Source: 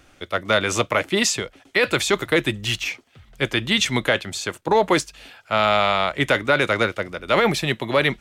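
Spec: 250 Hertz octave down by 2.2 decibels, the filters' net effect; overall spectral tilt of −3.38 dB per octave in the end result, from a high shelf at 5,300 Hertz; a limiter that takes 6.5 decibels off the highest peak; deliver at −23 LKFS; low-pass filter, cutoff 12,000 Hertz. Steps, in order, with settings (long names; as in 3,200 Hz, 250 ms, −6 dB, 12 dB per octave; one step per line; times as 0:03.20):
low-pass filter 12,000 Hz
parametric band 250 Hz −3 dB
high-shelf EQ 5,300 Hz −3.5 dB
level +2 dB
brickwall limiter −11 dBFS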